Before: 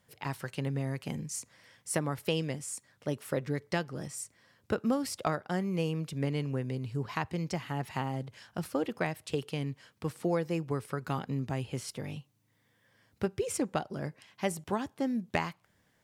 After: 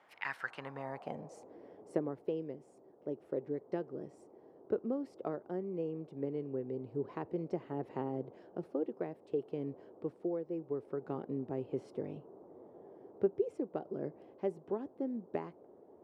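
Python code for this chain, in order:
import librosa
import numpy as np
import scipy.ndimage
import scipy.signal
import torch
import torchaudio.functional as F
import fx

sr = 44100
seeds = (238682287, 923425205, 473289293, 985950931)

y = fx.dmg_noise_band(x, sr, seeds[0], low_hz=62.0, high_hz=880.0, level_db=-55.0)
y = fx.filter_sweep_bandpass(y, sr, from_hz=2200.0, to_hz=390.0, start_s=0.11, end_s=1.56, q=2.5)
y = fx.rider(y, sr, range_db=5, speed_s=0.5)
y = F.gain(torch.from_numpy(y), 1.5).numpy()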